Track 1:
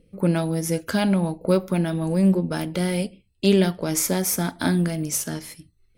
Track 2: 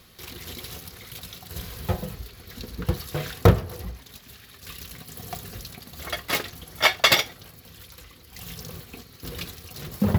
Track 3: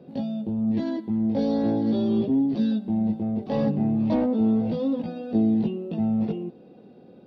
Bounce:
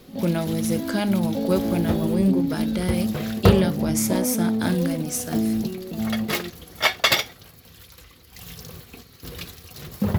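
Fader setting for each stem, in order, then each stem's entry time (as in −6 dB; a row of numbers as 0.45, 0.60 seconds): −2.5, −1.0, −2.0 decibels; 0.00, 0.00, 0.00 seconds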